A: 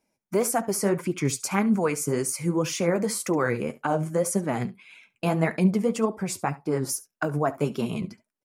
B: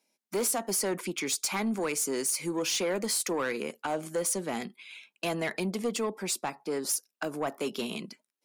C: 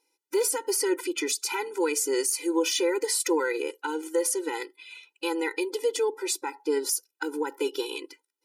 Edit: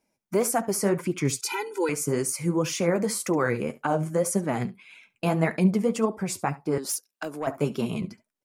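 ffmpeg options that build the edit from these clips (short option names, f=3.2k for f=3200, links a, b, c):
-filter_complex "[0:a]asplit=3[a][b][c];[a]atrim=end=1.412[d];[2:a]atrim=start=1.408:end=1.892[e];[b]atrim=start=1.888:end=6.782[f];[1:a]atrim=start=6.778:end=7.472[g];[c]atrim=start=7.468[h];[d][e]acrossfade=d=0.004:c1=hsin:c2=hsin[i];[i][f]acrossfade=d=0.004:c1=hsin:c2=hsin[j];[j][g]acrossfade=d=0.004:c1=hsin:c2=hsin[k];[k][h]acrossfade=d=0.004:c1=hsin:c2=hsin"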